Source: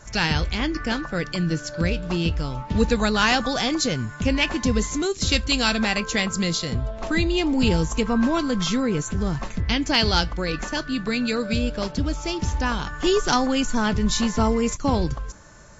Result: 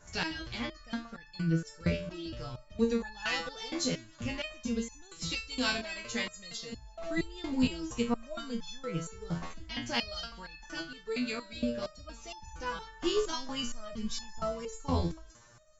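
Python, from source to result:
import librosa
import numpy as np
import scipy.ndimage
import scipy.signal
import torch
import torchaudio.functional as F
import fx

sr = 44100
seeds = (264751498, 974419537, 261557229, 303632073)

p1 = x + fx.echo_wet_highpass(x, sr, ms=159, feedback_pct=80, hz=1900.0, wet_db=-23.5, dry=0)
y = fx.resonator_held(p1, sr, hz=4.3, low_hz=85.0, high_hz=870.0)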